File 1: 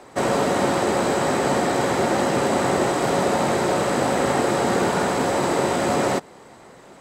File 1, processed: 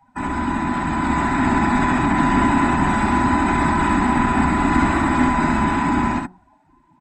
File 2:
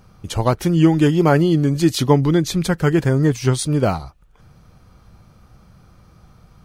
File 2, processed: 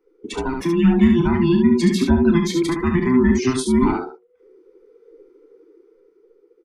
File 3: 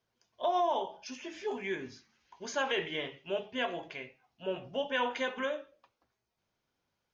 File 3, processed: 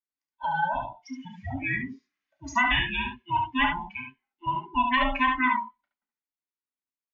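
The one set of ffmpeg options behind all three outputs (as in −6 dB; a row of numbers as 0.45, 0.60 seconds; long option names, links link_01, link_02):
-filter_complex "[0:a]afftfilt=real='real(if(between(b,1,1008),(2*floor((b-1)/24)+1)*24-b,b),0)':imag='imag(if(between(b,1,1008),(2*floor((b-1)/24)+1)*24-b,b),0)*if(between(b,1,1008),-1,1)':win_size=2048:overlap=0.75,bandreject=frequency=183.2:width_type=h:width=4,bandreject=frequency=366.4:width_type=h:width=4,bandreject=frequency=549.6:width_type=h:width=4,bandreject=frequency=732.8:width_type=h:width=4,afftdn=noise_reduction=25:noise_floor=-35,equalizer=frequency=125:width_type=o:width=1:gain=-10,equalizer=frequency=250:width_type=o:width=1:gain=10,equalizer=frequency=500:width_type=o:width=1:gain=-8,equalizer=frequency=1000:width_type=o:width=1:gain=4,equalizer=frequency=2000:width_type=o:width=1:gain=8,acrossover=split=300[link_01][link_02];[link_02]acompressor=threshold=-18dB:ratio=2[link_03];[link_01][link_03]amix=inputs=2:normalize=0,acrossover=split=350[link_04][link_05];[link_05]alimiter=limit=-18dB:level=0:latency=1:release=133[link_06];[link_04][link_06]amix=inputs=2:normalize=0,dynaudnorm=framelen=180:gausssize=13:maxgain=7dB,aecho=1:1:32|71:0.316|0.562,volume=-2.5dB"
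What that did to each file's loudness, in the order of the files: +2.5, −0.5, +8.5 LU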